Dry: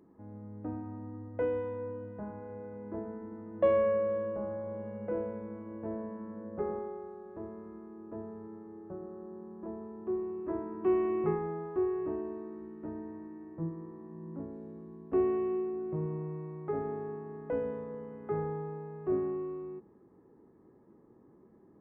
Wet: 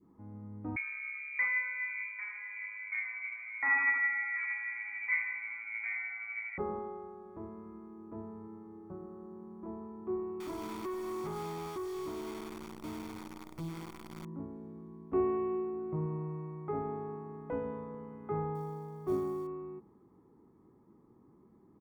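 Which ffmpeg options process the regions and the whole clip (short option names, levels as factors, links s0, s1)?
-filter_complex "[0:a]asettb=1/sr,asplit=3[s0][s1][s2];[s0]atrim=end=0.764[s3];[s1]atrim=start=0.76:end=6.58,asetpts=PTS-STARTPTS,afade=t=in:d=0.004:c=qsin,afade=t=out:st=5.816:d=0.004:c=qsin,asoftclip=type=hard:threshold=0.0501,aphaser=in_gain=1:out_gain=1:delay=3.4:decay=0.33:speed=1.6:type=triangular,lowpass=f=2100:t=q:w=0.5098,lowpass=f=2100:t=q:w=0.6013,lowpass=f=2100:t=q:w=0.9,lowpass=f=2100:t=q:w=2.563,afreqshift=-2500[s4];[s2]atrim=start=6.576[s5];[s3][s4]acrossfade=d=0.004:c1=hsin:c2=qsin[s6];[s6][s5]acrossfade=d=0.004:c1=qsin:c2=hsin,asettb=1/sr,asplit=3[s7][s8][s9];[s7]atrim=end=10.404[s10];[s8]atrim=start=10.4:end=14.25,asetpts=PTS-STARTPTS,afade=t=in:d=0.004:c=qsin,afade=t=out:st=3.846:d=0.004:c=qsin,acrusher=bits=8:dc=4:mix=0:aa=0.000001,acompressor=threshold=0.0224:ratio=3:attack=3.2:release=140:knee=1:detection=peak,asoftclip=type=hard:threshold=0.02[s11];[s9]atrim=start=14.246[s12];[s10][s11]acrossfade=d=0.004:c1=hsin:c2=qsin[s13];[s13][s12]acrossfade=d=0.004:c1=qsin:c2=hsin,asettb=1/sr,asplit=3[s14][s15][s16];[s14]atrim=end=18.554[s17];[s15]atrim=start=18.55:end=19.47,asetpts=PTS-STARTPTS,afade=t=in:d=0.004:c=qsin,afade=t=out:st=0.916:d=0.004:c=qsin,bandreject=f=2500:w=15,acrusher=bits=8:mode=log:mix=0:aa=0.000001[s18];[s16]atrim=start=19.466[s19];[s17][s18]acrossfade=d=0.004:c1=hsin:c2=qsin[s20];[s20][s19]acrossfade=d=0.004:c1=qsin:c2=hsin,aecho=1:1:0.9:0.46,adynamicequalizer=threshold=0.00631:dfrequency=800:dqfactor=0.77:tfrequency=800:tqfactor=0.77:attack=5:release=100:ratio=0.375:range=2:mode=boostabove:tftype=bell,volume=0.75"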